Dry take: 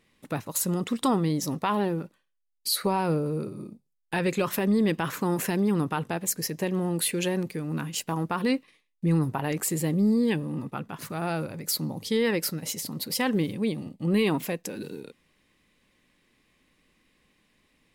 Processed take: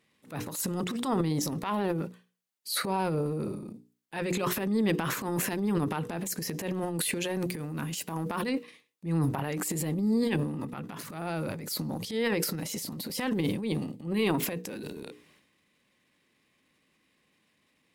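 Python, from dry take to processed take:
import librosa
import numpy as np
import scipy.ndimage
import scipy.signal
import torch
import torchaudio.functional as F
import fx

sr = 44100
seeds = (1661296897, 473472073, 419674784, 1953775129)

y = fx.high_shelf(x, sr, hz=8500.0, db=5.0, at=(7.34, 8.47))
y = scipy.signal.sosfilt(scipy.signal.butter(2, 97.0, 'highpass', fs=sr, output='sos'), y)
y = fx.hum_notches(y, sr, base_hz=60, count=8)
y = fx.transient(y, sr, attack_db=-9, sustain_db=10)
y = y * librosa.db_to_amplitude(-3.0)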